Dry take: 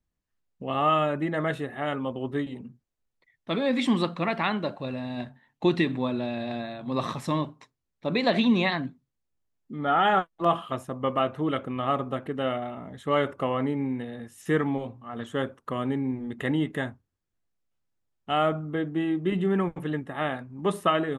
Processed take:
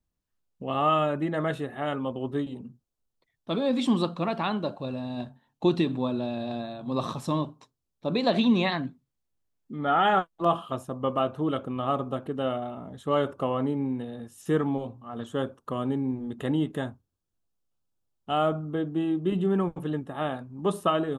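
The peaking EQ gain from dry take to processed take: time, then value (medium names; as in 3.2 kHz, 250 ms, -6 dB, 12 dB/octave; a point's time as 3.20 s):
peaking EQ 2 kHz 0.56 oct
2.11 s -5.5 dB
2.63 s -14 dB
8.08 s -14 dB
8.77 s -3 dB
10.13 s -3 dB
10.60 s -12.5 dB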